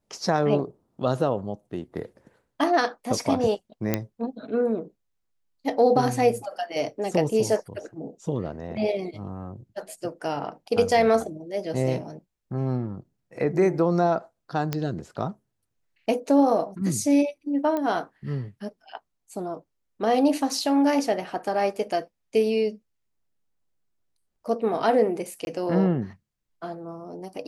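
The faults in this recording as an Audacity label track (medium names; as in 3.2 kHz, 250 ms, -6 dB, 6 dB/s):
3.940000	3.940000	pop -8 dBFS
14.730000	14.730000	pop -12 dBFS
17.770000	17.770000	pop -16 dBFS
25.450000	25.470000	dropout 21 ms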